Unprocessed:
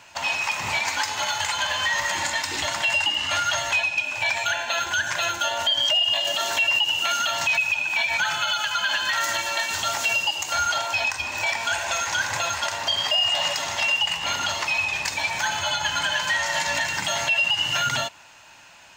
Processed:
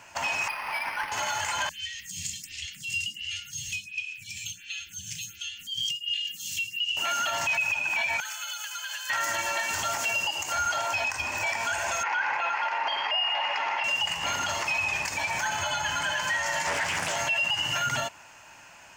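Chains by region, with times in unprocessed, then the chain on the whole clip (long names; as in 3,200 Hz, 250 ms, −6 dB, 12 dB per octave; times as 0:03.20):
0:00.48–0:01.12: high-pass filter 880 Hz + high-frequency loss of the air 150 metres + linearly interpolated sample-rate reduction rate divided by 6×
0:01.69–0:06.97: elliptic band-stop filter 180–2,900 Hz, stop band 80 dB + phaser with staggered stages 1.4 Hz
0:08.20–0:09.10: Butterworth high-pass 480 Hz 72 dB per octave + first difference
0:12.03–0:13.84: loudspeaker in its box 390–3,900 Hz, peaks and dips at 430 Hz +3 dB, 610 Hz −5 dB, 870 Hz +9 dB, 1,400 Hz +3 dB, 2,300 Hz +10 dB, 3,600 Hz −6 dB + notch filter 2,300 Hz, Q 17
0:16.66–0:17.16: double-tracking delay 12 ms −5.5 dB + highs frequency-modulated by the lows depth 0.48 ms
whole clip: parametric band 3,800 Hz −10.5 dB 0.48 octaves; brickwall limiter −19.5 dBFS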